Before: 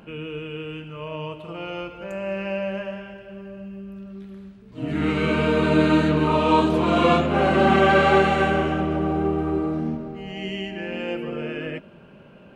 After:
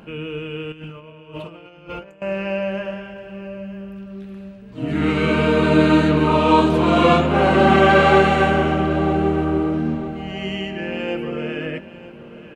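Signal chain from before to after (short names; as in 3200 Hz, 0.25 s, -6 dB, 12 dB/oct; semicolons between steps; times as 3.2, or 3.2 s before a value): 0.72–2.22 negative-ratio compressor -40 dBFS, ratio -0.5; on a send: feedback echo 0.946 s, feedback 28%, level -16 dB; on the sum: gain +3.5 dB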